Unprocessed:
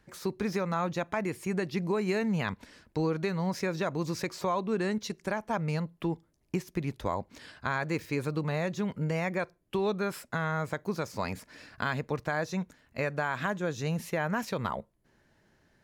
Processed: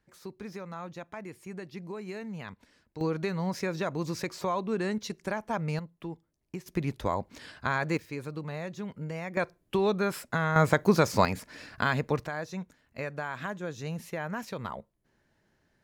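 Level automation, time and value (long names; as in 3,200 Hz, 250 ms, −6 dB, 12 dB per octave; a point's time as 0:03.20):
−10 dB
from 0:03.01 −0.5 dB
from 0:05.79 −7.5 dB
from 0:06.66 +2 dB
from 0:07.97 −6 dB
from 0:09.37 +3 dB
from 0:10.56 +10.5 dB
from 0:11.25 +4 dB
from 0:12.27 −4.5 dB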